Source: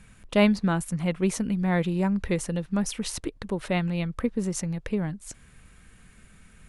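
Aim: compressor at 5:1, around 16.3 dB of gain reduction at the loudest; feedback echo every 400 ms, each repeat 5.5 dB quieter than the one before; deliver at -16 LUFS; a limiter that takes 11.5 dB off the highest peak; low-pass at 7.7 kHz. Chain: low-pass 7.7 kHz; compression 5:1, threshold -34 dBFS; peak limiter -30.5 dBFS; feedback delay 400 ms, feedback 53%, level -5.5 dB; trim +23 dB

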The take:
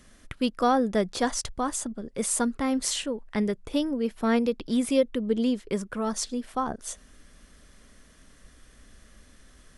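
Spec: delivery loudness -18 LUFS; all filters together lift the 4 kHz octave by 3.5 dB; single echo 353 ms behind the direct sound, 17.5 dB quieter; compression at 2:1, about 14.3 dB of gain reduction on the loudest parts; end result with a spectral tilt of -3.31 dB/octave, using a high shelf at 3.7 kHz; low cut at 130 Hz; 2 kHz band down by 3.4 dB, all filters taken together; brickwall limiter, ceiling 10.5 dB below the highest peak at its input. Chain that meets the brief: high-pass 130 Hz; peaking EQ 2 kHz -6.5 dB; treble shelf 3.7 kHz +4.5 dB; peaking EQ 4 kHz +3.5 dB; compression 2:1, threshold -45 dBFS; peak limiter -30.5 dBFS; delay 353 ms -17.5 dB; trim +23 dB

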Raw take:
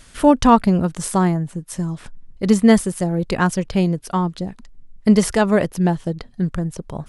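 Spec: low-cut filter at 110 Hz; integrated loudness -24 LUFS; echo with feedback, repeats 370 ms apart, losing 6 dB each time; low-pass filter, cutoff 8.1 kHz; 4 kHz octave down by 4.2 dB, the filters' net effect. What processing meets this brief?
high-pass 110 Hz; low-pass 8.1 kHz; peaking EQ 4 kHz -5.5 dB; feedback delay 370 ms, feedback 50%, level -6 dB; trim -6 dB

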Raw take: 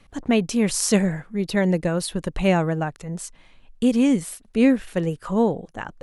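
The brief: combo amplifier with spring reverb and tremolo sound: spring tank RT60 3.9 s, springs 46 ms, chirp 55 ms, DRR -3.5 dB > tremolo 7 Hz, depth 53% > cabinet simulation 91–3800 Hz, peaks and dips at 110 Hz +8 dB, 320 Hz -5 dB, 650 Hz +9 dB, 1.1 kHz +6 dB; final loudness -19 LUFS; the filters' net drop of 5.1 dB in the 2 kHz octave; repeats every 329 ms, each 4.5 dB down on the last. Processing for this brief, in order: peaking EQ 2 kHz -7 dB; feedback delay 329 ms, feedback 60%, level -4.5 dB; spring tank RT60 3.9 s, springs 46 ms, chirp 55 ms, DRR -3.5 dB; tremolo 7 Hz, depth 53%; cabinet simulation 91–3800 Hz, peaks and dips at 110 Hz +8 dB, 320 Hz -5 dB, 650 Hz +9 dB, 1.1 kHz +6 dB

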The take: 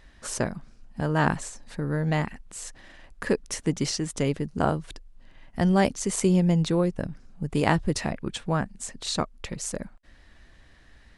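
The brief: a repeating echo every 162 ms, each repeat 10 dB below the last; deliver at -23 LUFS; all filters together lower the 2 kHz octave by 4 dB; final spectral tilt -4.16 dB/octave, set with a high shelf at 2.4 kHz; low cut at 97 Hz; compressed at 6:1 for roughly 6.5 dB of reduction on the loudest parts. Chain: high-pass 97 Hz; peaking EQ 2 kHz -8 dB; treble shelf 2.4 kHz +6.5 dB; compression 6:1, threshold -24 dBFS; feedback delay 162 ms, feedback 32%, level -10 dB; trim +7 dB

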